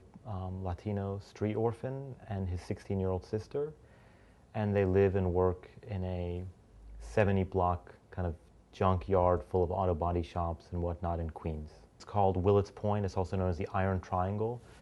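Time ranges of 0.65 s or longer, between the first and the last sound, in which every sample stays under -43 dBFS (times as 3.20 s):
3.71–4.55 s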